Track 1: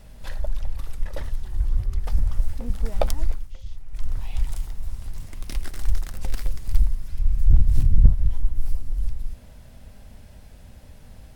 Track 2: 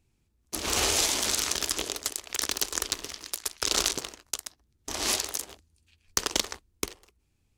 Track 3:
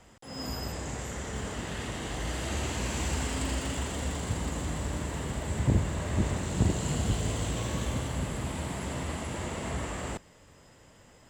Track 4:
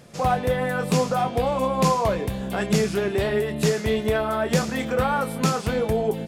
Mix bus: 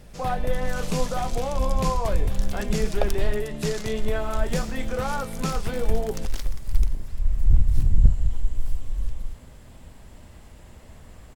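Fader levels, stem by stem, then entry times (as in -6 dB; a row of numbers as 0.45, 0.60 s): -2.0, -16.0, -18.5, -6.0 dB; 0.00, 0.00, 1.25, 0.00 s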